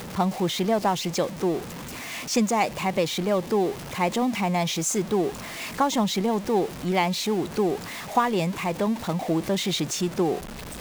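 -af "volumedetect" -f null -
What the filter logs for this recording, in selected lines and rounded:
mean_volume: -25.4 dB
max_volume: -9.7 dB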